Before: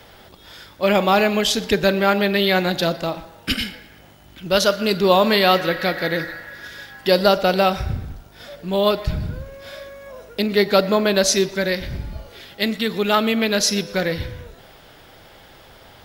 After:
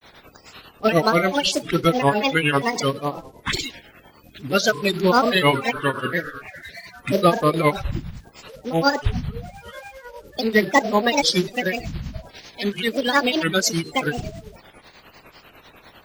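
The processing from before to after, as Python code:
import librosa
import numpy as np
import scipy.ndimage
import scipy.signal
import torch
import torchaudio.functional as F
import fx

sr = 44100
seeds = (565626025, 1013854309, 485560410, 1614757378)

y = fx.spec_quant(x, sr, step_db=30)
y = fx.granulator(y, sr, seeds[0], grain_ms=147.0, per_s=10.0, spray_ms=17.0, spread_st=7)
y = y * 10.0 ** (1.5 / 20.0)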